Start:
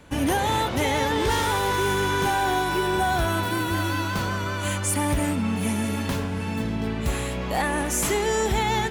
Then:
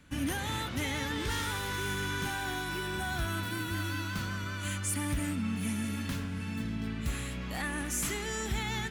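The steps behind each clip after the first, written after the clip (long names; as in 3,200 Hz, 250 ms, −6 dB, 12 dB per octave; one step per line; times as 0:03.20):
flat-topped bell 610 Hz −9 dB
level −7.5 dB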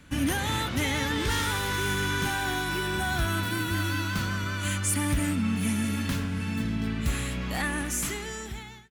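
fade-out on the ending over 1.30 s
level +6 dB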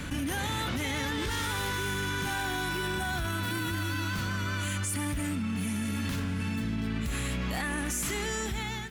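brickwall limiter −25.5 dBFS, peak gain reduction 9.5 dB
envelope flattener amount 70%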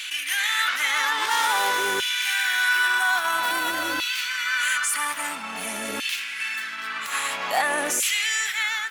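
auto-filter high-pass saw down 0.5 Hz 480–2,900 Hz
level +8.5 dB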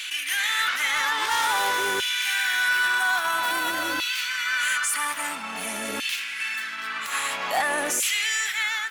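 soft clipping −14.5 dBFS, distortion −22 dB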